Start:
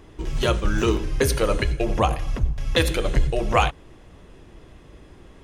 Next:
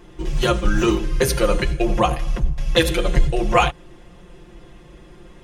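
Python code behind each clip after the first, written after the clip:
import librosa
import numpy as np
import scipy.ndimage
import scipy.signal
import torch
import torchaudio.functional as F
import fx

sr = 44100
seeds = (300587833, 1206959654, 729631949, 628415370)

y = x + 0.98 * np.pad(x, (int(5.7 * sr / 1000.0), 0))[:len(x)]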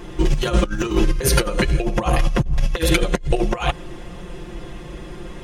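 y = fx.over_compress(x, sr, threshold_db=-22.0, ratio=-0.5)
y = F.gain(torch.from_numpy(y), 5.0).numpy()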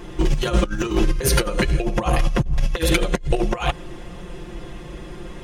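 y = np.minimum(x, 2.0 * 10.0 ** (-9.0 / 20.0) - x)
y = F.gain(torch.from_numpy(y), -1.0).numpy()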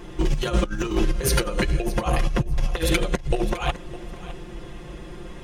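y = fx.echo_feedback(x, sr, ms=609, feedback_pct=16, wet_db=-16)
y = F.gain(torch.from_numpy(y), -3.0).numpy()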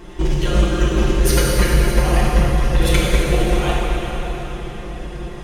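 y = fx.rev_plate(x, sr, seeds[0], rt60_s=4.2, hf_ratio=0.8, predelay_ms=0, drr_db=-5.0)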